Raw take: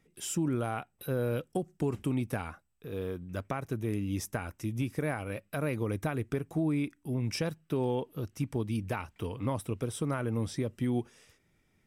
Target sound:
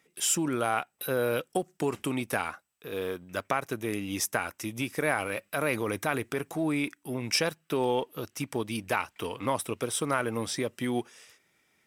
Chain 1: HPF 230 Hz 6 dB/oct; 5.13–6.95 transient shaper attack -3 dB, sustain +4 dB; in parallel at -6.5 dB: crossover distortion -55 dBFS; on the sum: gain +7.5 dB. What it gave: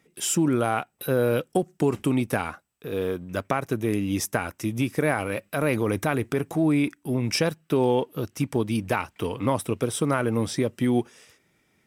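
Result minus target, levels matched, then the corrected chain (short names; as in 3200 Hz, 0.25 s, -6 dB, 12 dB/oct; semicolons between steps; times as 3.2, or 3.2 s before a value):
250 Hz band +3.0 dB
HPF 830 Hz 6 dB/oct; 5.13–6.95 transient shaper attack -3 dB, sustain +4 dB; in parallel at -6.5 dB: crossover distortion -55 dBFS; on the sum: gain +7.5 dB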